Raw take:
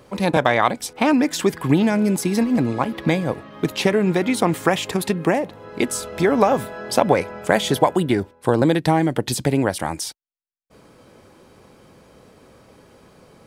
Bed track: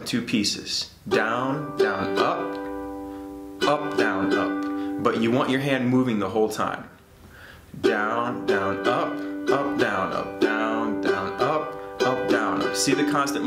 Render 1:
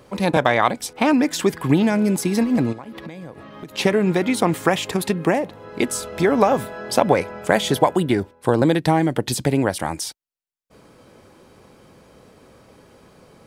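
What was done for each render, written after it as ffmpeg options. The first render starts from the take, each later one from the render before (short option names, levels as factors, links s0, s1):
-filter_complex "[0:a]asplit=3[s0][s1][s2];[s0]afade=t=out:st=2.72:d=0.02[s3];[s1]acompressor=threshold=0.0282:ratio=12:attack=3.2:release=140:knee=1:detection=peak,afade=t=in:st=2.72:d=0.02,afade=t=out:st=3.77:d=0.02[s4];[s2]afade=t=in:st=3.77:d=0.02[s5];[s3][s4][s5]amix=inputs=3:normalize=0"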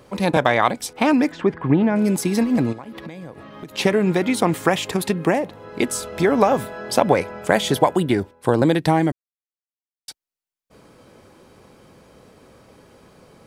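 -filter_complex "[0:a]asplit=3[s0][s1][s2];[s0]afade=t=out:st=1.3:d=0.02[s3];[s1]lowpass=1800,afade=t=in:st=1.3:d=0.02,afade=t=out:st=1.95:d=0.02[s4];[s2]afade=t=in:st=1.95:d=0.02[s5];[s3][s4][s5]amix=inputs=3:normalize=0,asplit=3[s6][s7][s8];[s6]atrim=end=9.12,asetpts=PTS-STARTPTS,afade=t=out:st=9.116:d=0.004:c=hsin[s9];[s7]atrim=start=9.12:end=10.08,asetpts=PTS-STARTPTS,volume=0[s10];[s8]atrim=start=10.08,asetpts=PTS-STARTPTS,afade=t=in:d=0.004:c=hsin[s11];[s9][s10][s11]concat=n=3:v=0:a=1"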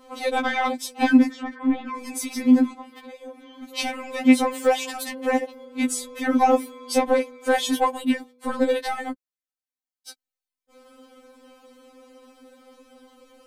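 -af "asoftclip=type=tanh:threshold=0.501,afftfilt=real='re*3.46*eq(mod(b,12),0)':imag='im*3.46*eq(mod(b,12),0)':win_size=2048:overlap=0.75"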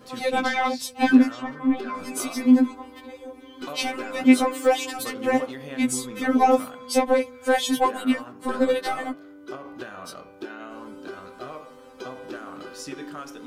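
-filter_complex "[1:a]volume=0.178[s0];[0:a][s0]amix=inputs=2:normalize=0"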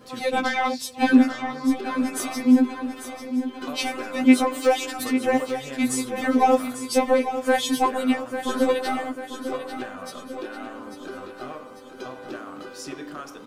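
-af "aecho=1:1:845|1690|2535|3380|4225|5070:0.316|0.164|0.0855|0.0445|0.0231|0.012"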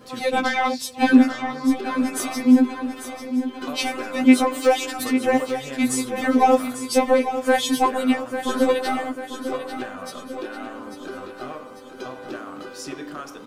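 -af "volume=1.26,alimiter=limit=0.708:level=0:latency=1"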